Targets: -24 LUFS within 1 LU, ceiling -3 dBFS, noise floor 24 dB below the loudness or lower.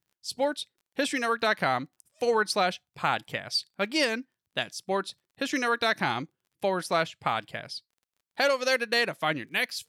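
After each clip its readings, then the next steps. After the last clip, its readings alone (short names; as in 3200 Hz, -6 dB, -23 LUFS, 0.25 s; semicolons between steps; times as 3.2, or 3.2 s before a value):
ticks 28/s; loudness -28.5 LUFS; peak -13.0 dBFS; loudness target -24.0 LUFS
-> de-click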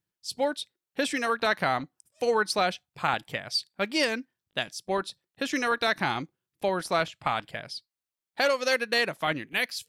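ticks 0/s; loudness -28.5 LUFS; peak -11.0 dBFS; loudness target -24.0 LUFS
-> gain +4.5 dB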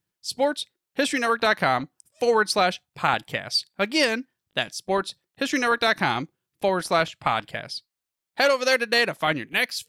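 loudness -24.0 LUFS; peak -6.5 dBFS; noise floor -86 dBFS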